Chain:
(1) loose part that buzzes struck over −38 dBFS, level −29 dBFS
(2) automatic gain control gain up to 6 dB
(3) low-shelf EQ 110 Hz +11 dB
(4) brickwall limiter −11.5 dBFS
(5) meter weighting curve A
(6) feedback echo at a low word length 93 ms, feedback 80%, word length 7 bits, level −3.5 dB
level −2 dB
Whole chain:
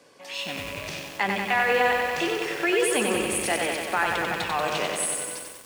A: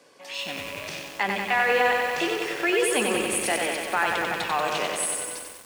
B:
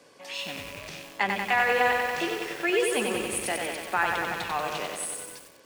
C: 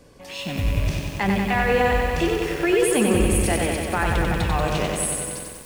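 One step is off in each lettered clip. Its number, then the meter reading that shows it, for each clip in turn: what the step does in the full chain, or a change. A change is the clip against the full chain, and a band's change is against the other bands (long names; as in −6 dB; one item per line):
3, 125 Hz band −3.5 dB
2, 1 kHz band +2.0 dB
5, 125 Hz band +15.5 dB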